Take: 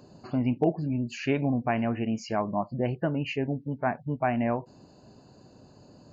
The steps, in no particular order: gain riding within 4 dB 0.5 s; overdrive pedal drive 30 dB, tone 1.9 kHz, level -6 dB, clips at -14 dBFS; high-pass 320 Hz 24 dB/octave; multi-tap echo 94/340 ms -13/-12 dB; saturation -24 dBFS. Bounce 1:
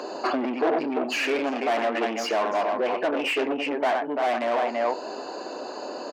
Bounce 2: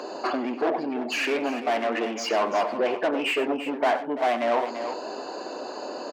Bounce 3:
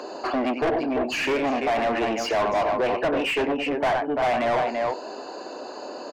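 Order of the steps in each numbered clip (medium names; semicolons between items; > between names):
multi-tap echo > saturation > overdrive pedal > high-pass > gain riding; saturation > overdrive pedal > multi-tap echo > gain riding > high-pass; multi-tap echo > saturation > gain riding > high-pass > overdrive pedal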